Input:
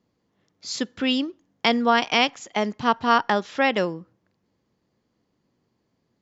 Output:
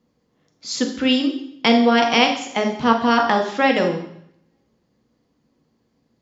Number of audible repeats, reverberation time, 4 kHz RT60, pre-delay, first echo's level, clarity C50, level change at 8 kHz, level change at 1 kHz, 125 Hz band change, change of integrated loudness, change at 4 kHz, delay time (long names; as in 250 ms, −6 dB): no echo audible, 0.70 s, 0.70 s, 3 ms, no echo audible, 7.5 dB, can't be measured, +3.0 dB, +5.0 dB, +4.0 dB, +3.5 dB, no echo audible